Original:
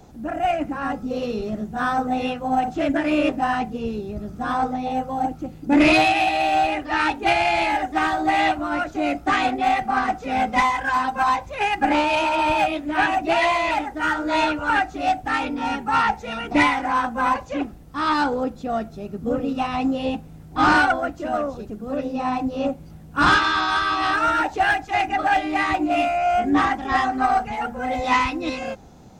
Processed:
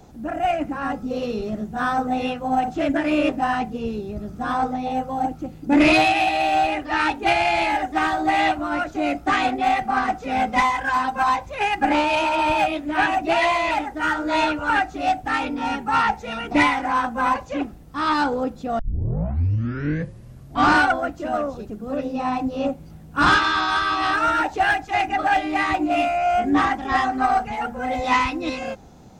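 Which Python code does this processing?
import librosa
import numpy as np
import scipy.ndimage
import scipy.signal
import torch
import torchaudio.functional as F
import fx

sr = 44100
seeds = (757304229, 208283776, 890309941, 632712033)

y = fx.edit(x, sr, fx.tape_start(start_s=18.79, length_s=1.93), tone=tone)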